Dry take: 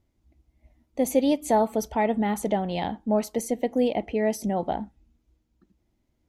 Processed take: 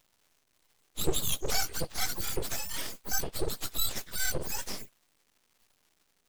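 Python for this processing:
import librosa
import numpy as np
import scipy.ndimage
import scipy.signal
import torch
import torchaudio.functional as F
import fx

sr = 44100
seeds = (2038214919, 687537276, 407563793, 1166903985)

y = fx.octave_mirror(x, sr, pivot_hz=1400.0)
y = fx.dmg_crackle(y, sr, seeds[0], per_s=430.0, level_db=-55.0)
y = np.abs(y)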